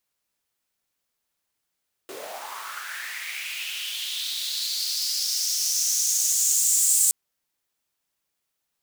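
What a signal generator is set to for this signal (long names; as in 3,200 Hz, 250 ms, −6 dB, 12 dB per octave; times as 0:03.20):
filter sweep on noise pink, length 5.02 s highpass, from 330 Hz, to 7,900 Hz, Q 4.6, linear, gain ramp +21 dB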